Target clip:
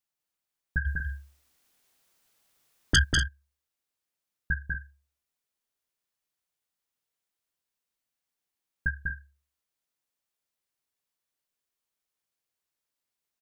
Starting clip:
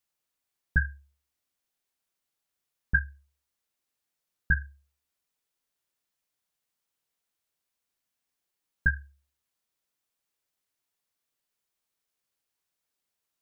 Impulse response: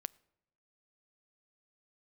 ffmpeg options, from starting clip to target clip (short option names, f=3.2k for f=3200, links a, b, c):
-filter_complex "[0:a]asplit=3[a][b][c];[a]afade=t=out:st=0.85:d=0.02[d];[b]aeval=exprs='0.299*sin(PI/2*4.47*val(0)/0.299)':c=same,afade=t=in:st=0.85:d=0.02,afade=t=out:st=3.03:d=0.02[e];[c]afade=t=in:st=3.03:d=0.02[f];[d][e][f]amix=inputs=3:normalize=0,aecho=1:1:195.3|242:0.631|0.282,volume=-4.5dB"